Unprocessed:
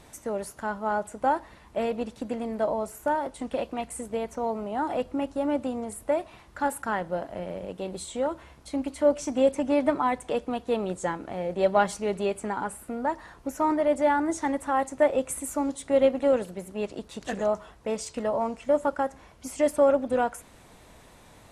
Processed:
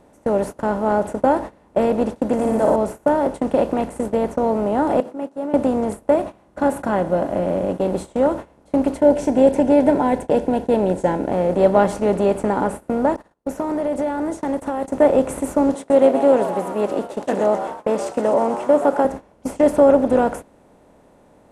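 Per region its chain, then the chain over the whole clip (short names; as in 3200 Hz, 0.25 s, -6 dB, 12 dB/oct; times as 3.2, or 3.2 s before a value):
2.33–2.76 resonant high shelf 5400 Hz +10.5 dB, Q 1.5 + flutter echo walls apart 10.1 m, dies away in 0.81 s
5–5.54 HPF 200 Hz 24 dB/oct + compressor 3:1, threshold -44 dBFS
6.14–7.81 notch 4900 Hz, Q 15 + notch comb 450 Hz
8.97–11.32 Butterworth band-stop 1200 Hz, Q 3.2 + mismatched tape noise reduction decoder only
13.16–14.9 high shelf 3000 Hz +7 dB + compressor 4:1, threshold -35 dBFS + gate -44 dBFS, range -40 dB
15.74–19.05 HPF 290 Hz + frequency-shifting echo 0.126 s, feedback 61%, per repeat +140 Hz, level -14.5 dB
whole clip: per-bin compression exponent 0.6; gate -31 dBFS, range -20 dB; tilt shelf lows +7 dB, about 830 Hz; gain +3 dB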